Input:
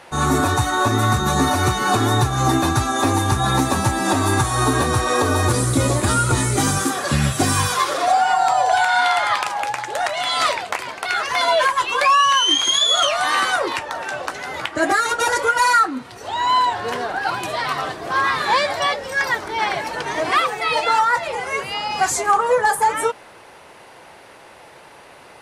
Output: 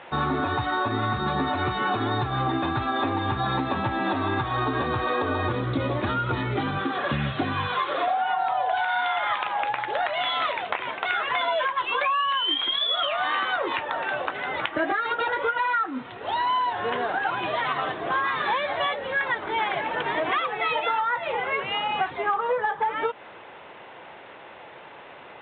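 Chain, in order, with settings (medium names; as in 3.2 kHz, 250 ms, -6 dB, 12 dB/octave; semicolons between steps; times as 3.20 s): high-pass 140 Hz 6 dB/octave; compression, threshold -22 dBFS, peak gain reduction 10 dB; A-law 64 kbps 8 kHz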